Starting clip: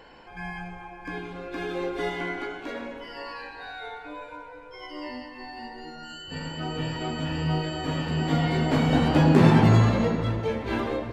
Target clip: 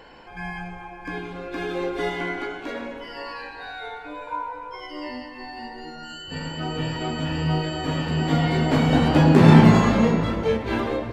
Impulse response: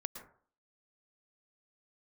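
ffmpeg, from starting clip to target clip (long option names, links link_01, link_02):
-filter_complex "[0:a]asettb=1/sr,asplit=3[link_01][link_02][link_03];[link_01]atrim=end=4.274[link_04];[link_02]atrim=start=4.27:end=4.8,asetpts=PTS-STARTPTS,afade=type=in:duration=0.004:curve=qsin,afade=type=out:start_time=0.526:duration=0.004:curve=qsin,equalizer=frequency=970:width_type=o:width=0.53:gain=12[link_05];[link_03]atrim=start=4.796[link_06];[link_04][link_05]acrossfade=duration=0.004:curve1=hsin:curve2=qsin[link_07];[link_07][link_06]acrossfade=duration=0.004:curve1=qsin:curve2=hsin,asettb=1/sr,asplit=3[link_08][link_09][link_10];[link_08]atrim=end=9.454[link_11];[link_09]atrim=start=9.45:end=10.57,asetpts=PTS-STARTPTS,afade=type=in:duration=0.004:curve=qsin,afade=type=out:start_time=1.116:duration=0.004:curve=qsin,asplit=2[link_12][link_13];[link_13]adelay=31,volume=-2dB[link_14];[link_12][link_14]amix=inputs=2:normalize=0,atrim=end_sample=49392[link_15];[link_10]atrim=start=10.566[link_16];[link_11][link_15]acrossfade=duration=0.004:curve1=hsin:curve2=qsin[link_17];[link_17][link_16]acrossfade=duration=0.004:curve1=qsin:curve2=hsin,volume=3dB"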